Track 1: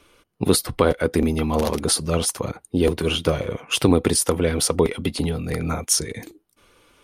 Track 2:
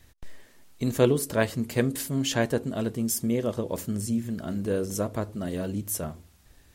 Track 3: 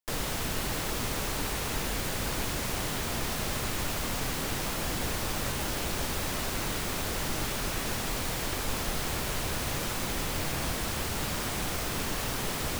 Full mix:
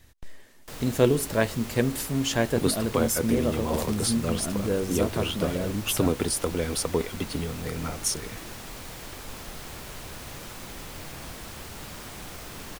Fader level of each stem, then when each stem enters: -7.5 dB, +0.5 dB, -8.0 dB; 2.15 s, 0.00 s, 0.60 s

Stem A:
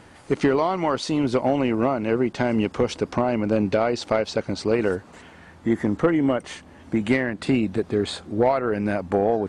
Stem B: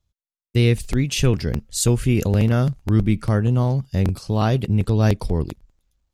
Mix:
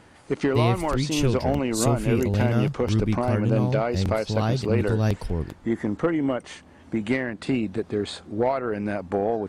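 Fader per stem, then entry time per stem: -3.5 dB, -5.5 dB; 0.00 s, 0.00 s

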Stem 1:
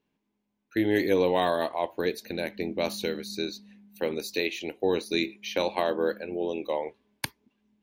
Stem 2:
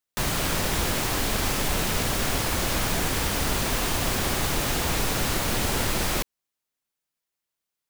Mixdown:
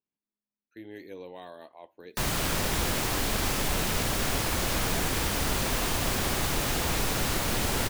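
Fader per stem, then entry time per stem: -19.5 dB, -2.5 dB; 0.00 s, 2.00 s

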